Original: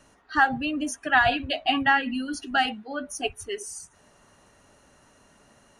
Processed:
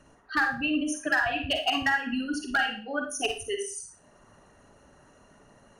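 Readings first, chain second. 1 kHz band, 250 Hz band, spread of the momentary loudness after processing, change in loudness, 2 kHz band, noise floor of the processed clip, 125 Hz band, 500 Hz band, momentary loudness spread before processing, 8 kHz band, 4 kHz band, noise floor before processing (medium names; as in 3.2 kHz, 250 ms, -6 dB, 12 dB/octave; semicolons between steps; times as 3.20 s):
-6.5 dB, -1.0 dB, 8 LU, -3.0 dB, -2.0 dB, -59 dBFS, -4.0 dB, -1.0 dB, 14 LU, +0.5 dB, -0.5 dB, -60 dBFS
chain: resonances exaggerated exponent 1.5; dynamic bell 1.7 kHz, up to +5 dB, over -33 dBFS, Q 0.86; compression 12:1, threshold -22 dBFS, peak gain reduction 12.5 dB; transient shaper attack +1 dB, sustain -4 dB; hard clipper -18.5 dBFS, distortion -17 dB; Schroeder reverb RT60 0.38 s, DRR 4 dB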